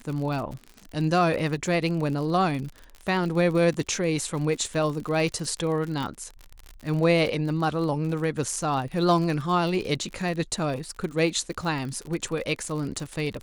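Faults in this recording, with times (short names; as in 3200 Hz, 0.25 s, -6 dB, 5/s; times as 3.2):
crackle 55/s -32 dBFS
6.03 pop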